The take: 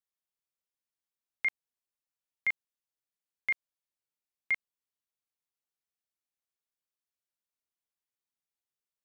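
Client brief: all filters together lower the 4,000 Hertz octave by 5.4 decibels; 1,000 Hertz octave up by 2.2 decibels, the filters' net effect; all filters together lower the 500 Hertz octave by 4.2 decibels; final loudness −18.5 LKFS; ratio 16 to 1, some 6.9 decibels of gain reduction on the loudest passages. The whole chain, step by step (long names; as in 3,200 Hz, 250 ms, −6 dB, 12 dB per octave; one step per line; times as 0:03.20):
parametric band 500 Hz −7 dB
parametric band 1,000 Hz +5 dB
parametric band 4,000 Hz −8.5 dB
downward compressor 16 to 1, threshold −33 dBFS
level +22.5 dB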